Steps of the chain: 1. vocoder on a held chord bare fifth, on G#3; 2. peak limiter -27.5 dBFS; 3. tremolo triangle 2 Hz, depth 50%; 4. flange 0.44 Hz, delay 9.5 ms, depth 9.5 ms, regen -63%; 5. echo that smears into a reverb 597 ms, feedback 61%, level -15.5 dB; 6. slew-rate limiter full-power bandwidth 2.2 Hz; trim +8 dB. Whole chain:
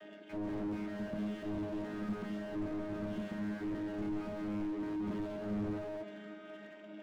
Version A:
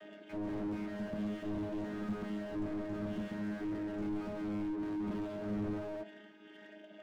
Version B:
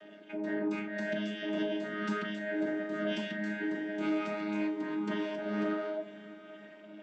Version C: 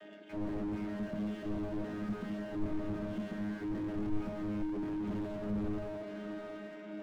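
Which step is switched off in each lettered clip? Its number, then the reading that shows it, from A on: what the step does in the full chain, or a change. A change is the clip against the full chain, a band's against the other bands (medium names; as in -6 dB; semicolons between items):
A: 5, momentary loudness spread change +2 LU; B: 6, 125 Hz band -8.0 dB; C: 2, mean gain reduction 3.5 dB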